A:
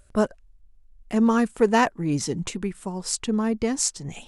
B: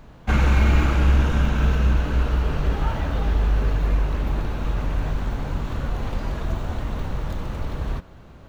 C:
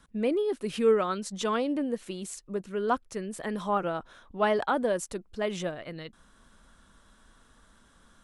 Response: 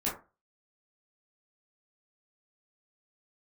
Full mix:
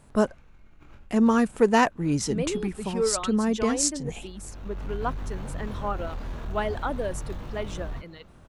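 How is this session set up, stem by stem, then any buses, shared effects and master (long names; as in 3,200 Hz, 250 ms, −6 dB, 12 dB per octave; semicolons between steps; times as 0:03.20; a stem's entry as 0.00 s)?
−0.5 dB, 0.00 s, no send, no processing
−6.5 dB, 0.00 s, no send, compressor whose output falls as the input rises −22 dBFS, ratio −0.5; chorus effect 0.39 Hz, delay 20 ms, depth 5.5 ms; soft clipping −19.5 dBFS, distortion −17 dB; automatic ducking −13 dB, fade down 0.30 s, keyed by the first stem
−2.5 dB, 2.15 s, no send, reverb reduction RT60 0.98 s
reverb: not used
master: no processing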